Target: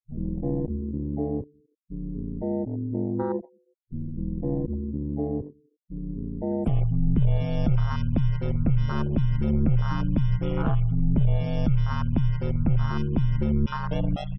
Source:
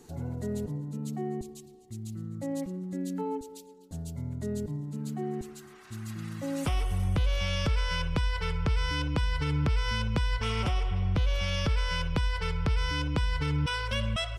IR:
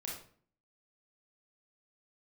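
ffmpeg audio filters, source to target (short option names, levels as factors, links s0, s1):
-filter_complex "[0:a]asplit=2[s0][s1];[1:a]atrim=start_sample=2205[s2];[s1][s2]afir=irnorm=-1:irlink=0,volume=0.106[s3];[s0][s3]amix=inputs=2:normalize=0,afftfilt=real='re*gte(hypot(re,im),0.0251)':imag='im*gte(hypot(re,im),0.0251)':win_size=1024:overlap=0.75,afwtdn=0.0316,aeval=exprs='val(0)*sin(2*PI*71*n/s)':c=same,volume=2.66"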